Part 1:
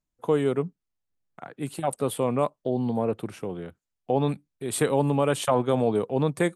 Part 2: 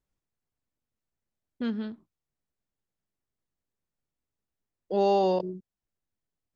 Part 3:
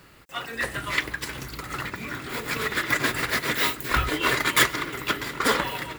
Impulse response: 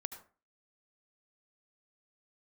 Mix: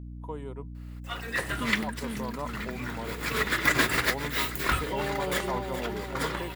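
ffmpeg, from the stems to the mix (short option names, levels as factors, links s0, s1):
-filter_complex "[0:a]equalizer=f=960:t=o:w=0.21:g=15,volume=0.133,asplit=2[s0][s1];[1:a]alimiter=level_in=1.19:limit=0.0631:level=0:latency=1,volume=0.841,volume=0.631,asplit=2[s2][s3];[s3]volume=0.668[s4];[2:a]dynaudnorm=f=230:g=5:m=2.37,adelay=750,volume=0.376,asplit=2[s5][s6];[s6]volume=0.075[s7];[s1]apad=whole_len=297095[s8];[s5][s8]sidechaincompress=threshold=0.00447:ratio=8:attack=36:release=353[s9];[s4][s7]amix=inputs=2:normalize=0,aecho=0:1:422|844|1266|1688|2110|2532|2954|3376:1|0.54|0.292|0.157|0.085|0.0459|0.0248|0.0134[s10];[s0][s2][s9][s10]amix=inputs=4:normalize=0,dynaudnorm=f=540:g=3:m=1.5,aeval=exprs='val(0)+0.0112*(sin(2*PI*60*n/s)+sin(2*PI*2*60*n/s)/2+sin(2*PI*3*60*n/s)/3+sin(2*PI*4*60*n/s)/4+sin(2*PI*5*60*n/s)/5)':c=same"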